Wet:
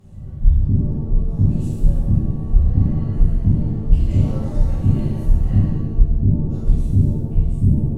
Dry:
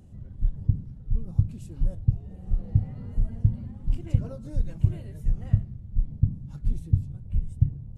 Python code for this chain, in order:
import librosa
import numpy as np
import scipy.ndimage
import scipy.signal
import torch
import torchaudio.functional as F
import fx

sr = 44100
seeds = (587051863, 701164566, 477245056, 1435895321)

y = fx.cheby_harmonics(x, sr, harmonics=(2,), levels_db=(-6,), full_scale_db=-6.5)
y = fx.rev_shimmer(y, sr, seeds[0], rt60_s=1.1, semitones=7, shimmer_db=-8, drr_db=-10.0)
y = F.gain(torch.from_numpy(y), -2.0).numpy()